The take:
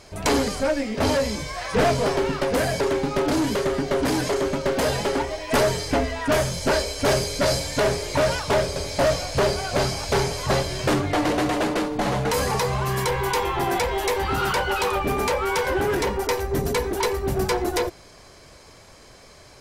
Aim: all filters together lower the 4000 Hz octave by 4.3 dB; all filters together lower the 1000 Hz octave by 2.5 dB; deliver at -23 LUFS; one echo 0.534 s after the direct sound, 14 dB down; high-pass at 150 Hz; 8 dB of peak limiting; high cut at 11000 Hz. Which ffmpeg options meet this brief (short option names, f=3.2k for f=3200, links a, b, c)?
-af "highpass=150,lowpass=11k,equalizer=f=1k:t=o:g=-3,equalizer=f=4k:t=o:g=-5.5,alimiter=limit=-18dB:level=0:latency=1,aecho=1:1:534:0.2,volume=3.5dB"